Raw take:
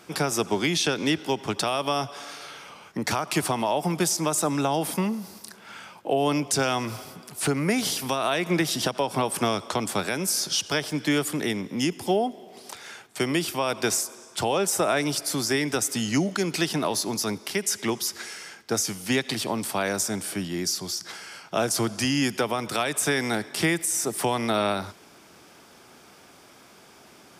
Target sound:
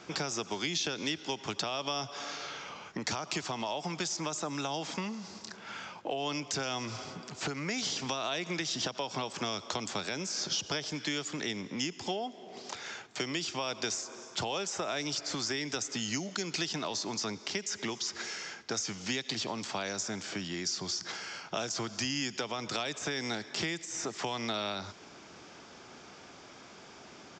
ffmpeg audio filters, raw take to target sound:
-filter_complex "[0:a]acrossover=split=910|3300[a][b][c];[a]acompressor=threshold=-38dB:ratio=4[d];[b]acompressor=threshold=-41dB:ratio=4[e];[c]acompressor=threshold=-33dB:ratio=4[f];[d][e][f]amix=inputs=3:normalize=0,aresample=16000,aresample=44100,aeval=exprs='0.15*(cos(1*acos(clip(val(0)/0.15,-1,1)))-cos(1*PI/2))+0.00119*(cos(5*acos(clip(val(0)/0.15,-1,1)))-cos(5*PI/2))':c=same"

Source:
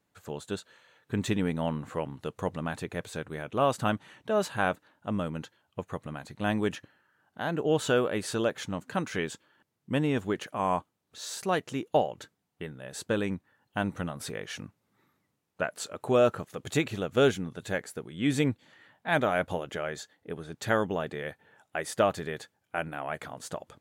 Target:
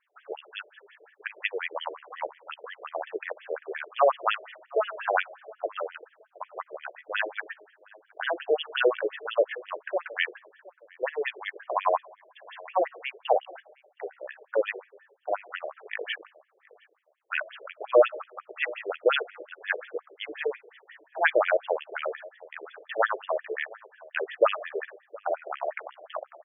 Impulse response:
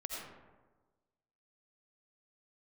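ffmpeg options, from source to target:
-filter_complex "[0:a]highpass=63,highshelf=f=2.1k:g=7,atempo=0.9,asplit=2[a][b];[b]adelay=718,lowpass=f=940:p=1,volume=-19.5dB,asplit=2[c][d];[d]adelay=718,lowpass=f=940:p=1,volume=0.28[e];[a][c][e]amix=inputs=3:normalize=0,asplit=2[f][g];[1:a]atrim=start_sample=2205,highshelf=f=3.1k:g=-9,adelay=6[h];[g][h]afir=irnorm=-1:irlink=0,volume=-22dB[i];[f][i]amix=inputs=2:normalize=0,afftfilt=real='re*between(b*sr/1024,470*pow(2500/470,0.5+0.5*sin(2*PI*5.6*pts/sr))/1.41,470*pow(2500/470,0.5+0.5*sin(2*PI*5.6*pts/sr))*1.41)':imag='im*between(b*sr/1024,470*pow(2500/470,0.5+0.5*sin(2*PI*5.6*pts/sr))/1.41,470*pow(2500/470,0.5+0.5*sin(2*PI*5.6*pts/sr))*1.41)':win_size=1024:overlap=0.75,volume=7dB"

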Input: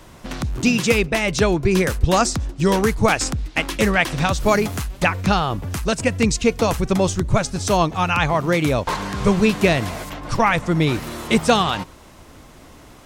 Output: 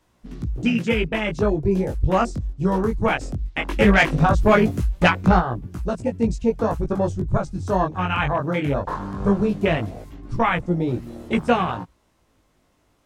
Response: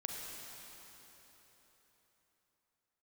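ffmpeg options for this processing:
-filter_complex "[0:a]afwtdn=0.0794,asplit=3[a][b][c];[a]afade=t=out:st=3.68:d=0.02[d];[b]acontrast=84,afade=t=in:st=3.68:d=0.02,afade=t=out:st=5.39:d=0.02[e];[c]afade=t=in:st=5.39:d=0.02[f];[d][e][f]amix=inputs=3:normalize=0,flanger=delay=16.5:depth=5.3:speed=0.18"

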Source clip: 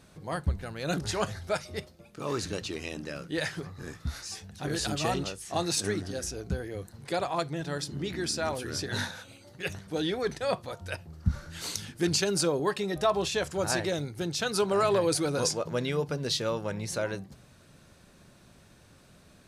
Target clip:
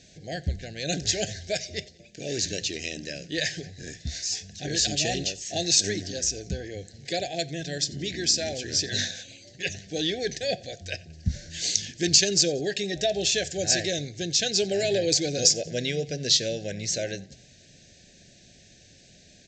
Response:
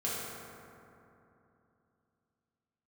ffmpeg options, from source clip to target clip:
-af "crystalizer=i=4:c=0,asuperstop=centerf=1100:order=12:qfactor=1.3,aresample=16000,aresample=44100,aecho=1:1:90|180|270:0.0668|0.0301|0.0135"

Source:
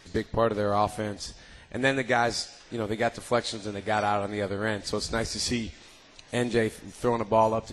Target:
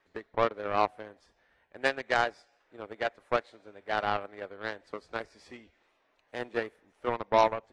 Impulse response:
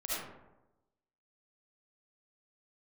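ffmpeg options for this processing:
-filter_complex "[0:a]acrossover=split=360 2400:gain=0.178 1 0.112[a][b][c];[a][b][c]amix=inputs=3:normalize=0,aeval=exprs='0.316*(cos(1*acos(clip(val(0)/0.316,-1,1)))-cos(1*PI/2))+0.0355*(cos(7*acos(clip(val(0)/0.316,-1,1)))-cos(7*PI/2))':c=same"

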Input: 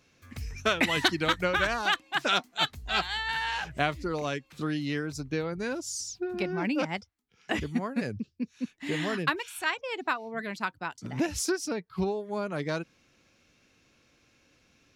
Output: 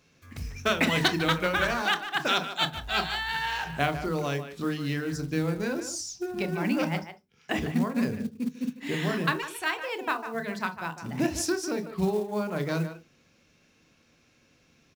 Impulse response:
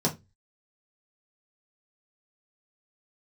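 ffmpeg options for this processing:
-filter_complex "[0:a]asplit=2[a][b];[b]adelay=150,highpass=300,lowpass=3.4k,asoftclip=type=hard:threshold=-18dB,volume=-10dB[c];[a][c]amix=inputs=2:normalize=0,asplit=2[d][e];[1:a]atrim=start_sample=2205,adelay=26[f];[e][f]afir=irnorm=-1:irlink=0,volume=-19dB[g];[d][g]amix=inputs=2:normalize=0,acrusher=bits=6:mode=log:mix=0:aa=0.000001"

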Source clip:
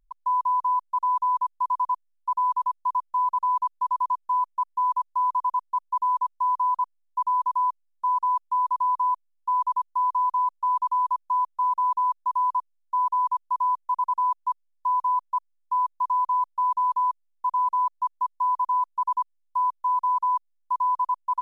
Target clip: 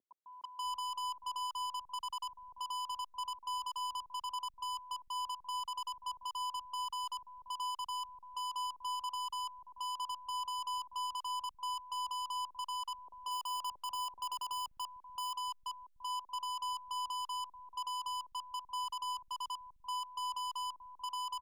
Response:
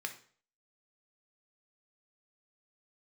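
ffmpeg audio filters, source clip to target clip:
-filter_complex "[0:a]asplit=3[a][b][c];[a]afade=t=out:st=12.98:d=0.02[d];[b]equalizer=f=580:t=o:w=2.5:g=14,afade=t=in:st=12.98:d=0.02,afade=t=out:st=14.98:d=0.02[e];[c]afade=t=in:st=14.98:d=0.02[f];[d][e][f]amix=inputs=3:normalize=0,aeval=exprs='(tanh(79.4*val(0)+0.05)-tanh(0.05))/79.4':c=same,acrossover=split=220|690[g][h][i];[i]adelay=330[j];[g]adelay=630[k];[k][h][j]amix=inputs=3:normalize=0,volume=1.5dB"

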